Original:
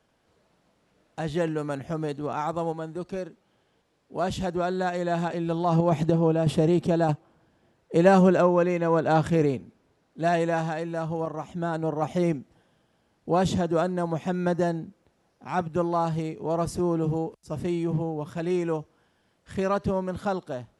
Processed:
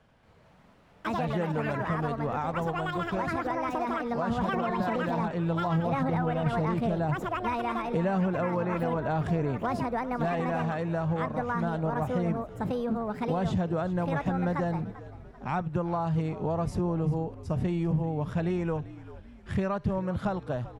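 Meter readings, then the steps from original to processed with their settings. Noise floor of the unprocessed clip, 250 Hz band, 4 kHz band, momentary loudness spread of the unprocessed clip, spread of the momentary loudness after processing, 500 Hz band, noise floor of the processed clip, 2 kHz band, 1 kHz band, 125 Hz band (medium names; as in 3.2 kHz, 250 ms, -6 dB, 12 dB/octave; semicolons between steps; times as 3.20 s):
-69 dBFS, -3.0 dB, -4.0 dB, 11 LU, 5 LU, -5.5 dB, -56 dBFS, -0.5 dB, -1.5 dB, -1.0 dB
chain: ever faster or slower copies 229 ms, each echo +6 st, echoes 2; peaking EQ 330 Hz -5.5 dB 0.93 oct; in parallel at -1 dB: peak limiter -18 dBFS, peak gain reduction 8.5 dB; on the sum: compression 4:1, threshold -29 dBFS, peak gain reduction 14.5 dB; tone controls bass +5 dB, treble -11 dB; on a send: frequency-shifting echo 391 ms, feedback 51%, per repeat -63 Hz, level -16 dB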